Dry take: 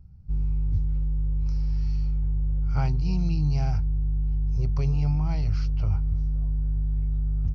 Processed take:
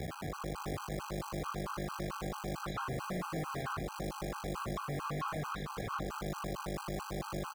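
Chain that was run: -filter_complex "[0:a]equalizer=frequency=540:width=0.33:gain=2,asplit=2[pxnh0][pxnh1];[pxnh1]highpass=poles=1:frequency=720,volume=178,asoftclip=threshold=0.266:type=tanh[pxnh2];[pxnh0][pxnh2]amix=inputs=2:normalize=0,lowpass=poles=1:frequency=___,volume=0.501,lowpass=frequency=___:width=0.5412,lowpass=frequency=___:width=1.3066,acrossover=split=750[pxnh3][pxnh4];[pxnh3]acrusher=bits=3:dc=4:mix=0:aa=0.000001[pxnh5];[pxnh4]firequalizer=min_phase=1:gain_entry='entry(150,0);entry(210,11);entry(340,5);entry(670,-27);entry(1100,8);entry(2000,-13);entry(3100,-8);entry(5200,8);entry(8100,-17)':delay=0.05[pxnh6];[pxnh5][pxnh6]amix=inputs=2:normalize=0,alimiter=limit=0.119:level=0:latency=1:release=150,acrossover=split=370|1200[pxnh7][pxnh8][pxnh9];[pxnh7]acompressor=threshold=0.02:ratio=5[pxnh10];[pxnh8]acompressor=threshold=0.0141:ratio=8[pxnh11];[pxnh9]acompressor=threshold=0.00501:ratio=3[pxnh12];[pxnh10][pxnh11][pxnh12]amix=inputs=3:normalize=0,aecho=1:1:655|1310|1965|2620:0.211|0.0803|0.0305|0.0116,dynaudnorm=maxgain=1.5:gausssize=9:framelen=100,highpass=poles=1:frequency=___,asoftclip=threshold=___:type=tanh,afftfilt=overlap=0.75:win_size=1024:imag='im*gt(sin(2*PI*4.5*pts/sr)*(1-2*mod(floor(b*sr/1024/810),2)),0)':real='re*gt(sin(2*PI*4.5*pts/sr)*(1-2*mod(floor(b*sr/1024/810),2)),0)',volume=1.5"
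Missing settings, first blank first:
1.5k, 2.2k, 2.2k, 130, 0.0178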